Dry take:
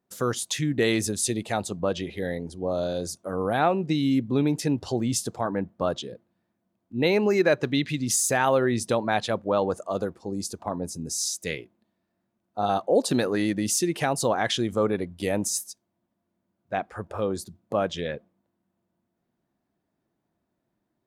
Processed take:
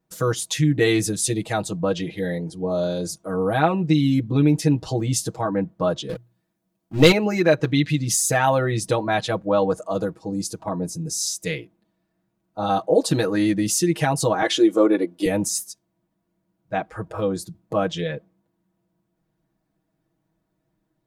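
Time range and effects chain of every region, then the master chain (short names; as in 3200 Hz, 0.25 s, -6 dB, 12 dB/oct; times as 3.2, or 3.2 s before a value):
6.09–7.12 sample leveller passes 2 + high shelf 3400 Hz +9 dB + notches 60/120 Hz
14.42–15.26 resonant high-pass 360 Hz, resonance Q 2.3 + comb 3.5 ms, depth 47%
whole clip: low shelf 92 Hz +12 dB; comb 6.3 ms, depth 95%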